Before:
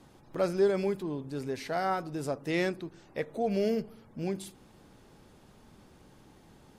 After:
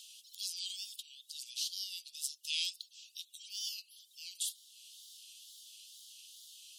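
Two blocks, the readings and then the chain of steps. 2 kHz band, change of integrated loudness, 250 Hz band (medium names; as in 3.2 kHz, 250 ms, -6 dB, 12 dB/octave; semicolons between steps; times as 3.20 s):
-11.5 dB, -7.5 dB, under -40 dB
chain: steep high-pass 2.9 kHz 96 dB/octave; upward compressor, threshold -57 dBFS; wow and flutter 130 cents; trim +10 dB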